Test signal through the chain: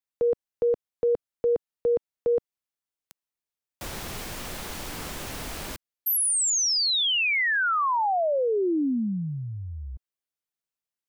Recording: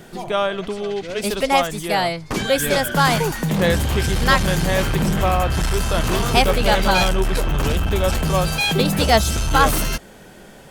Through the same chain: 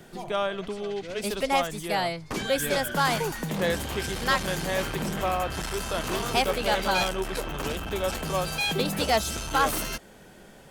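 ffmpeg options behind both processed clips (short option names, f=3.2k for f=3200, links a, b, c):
-filter_complex "[0:a]acrossover=split=210[a][b];[a]acompressor=threshold=-29dB:ratio=6[c];[b]volume=9dB,asoftclip=hard,volume=-9dB[d];[c][d]amix=inputs=2:normalize=0,volume=-7dB"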